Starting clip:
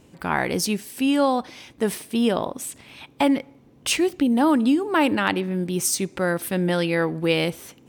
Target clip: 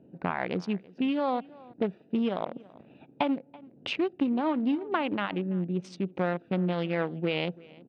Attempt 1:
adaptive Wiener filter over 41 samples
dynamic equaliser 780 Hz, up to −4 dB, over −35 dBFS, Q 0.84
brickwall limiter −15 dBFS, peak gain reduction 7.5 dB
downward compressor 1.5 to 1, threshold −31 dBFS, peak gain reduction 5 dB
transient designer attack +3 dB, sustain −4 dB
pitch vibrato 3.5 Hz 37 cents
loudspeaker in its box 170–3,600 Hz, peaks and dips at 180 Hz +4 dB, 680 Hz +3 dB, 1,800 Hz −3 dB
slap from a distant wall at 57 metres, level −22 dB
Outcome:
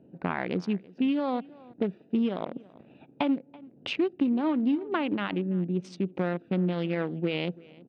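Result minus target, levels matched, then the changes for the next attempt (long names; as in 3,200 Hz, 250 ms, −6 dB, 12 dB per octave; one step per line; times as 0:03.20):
1,000 Hz band −3.5 dB
change: dynamic equaliser 300 Hz, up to −4 dB, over −35 dBFS, Q 0.84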